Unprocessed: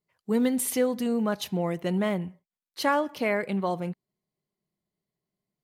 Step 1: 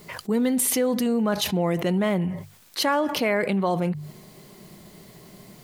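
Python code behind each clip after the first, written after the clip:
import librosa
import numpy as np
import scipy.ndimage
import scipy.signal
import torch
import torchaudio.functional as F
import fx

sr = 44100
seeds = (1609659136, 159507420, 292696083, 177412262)

y = fx.hum_notches(x, sr, base_hz=50, count=3)
y = fx.env_flatten(y, sr, amount_pct=70)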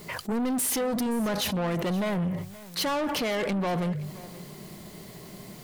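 y = 10.0 ** (-28.0 / 20.0) * np.tanh(x / 10.0 ** (-28.0 / 20.0))
y = y + 10.0 ** (-18.5 / 20.0) * np.pad(y, (int(523 * sr / 1000.0), 0))[:len(y)]
y = F.gain(torch.from_numpy(y), 3.0).numpy()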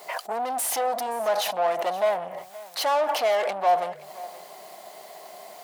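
y = fx.highpass_res(x, sr, hz=700.0, q=4.9)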